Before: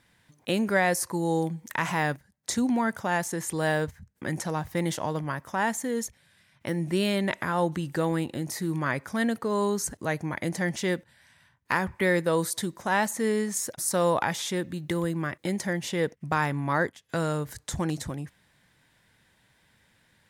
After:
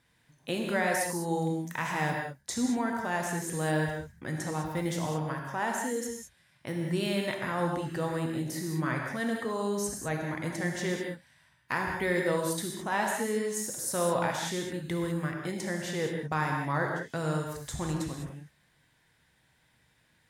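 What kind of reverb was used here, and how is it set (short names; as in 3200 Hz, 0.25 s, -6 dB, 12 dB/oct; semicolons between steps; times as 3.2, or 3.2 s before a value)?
non-linear reverb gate 0.23 s flat, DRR 0.5 dB; gain -6 dB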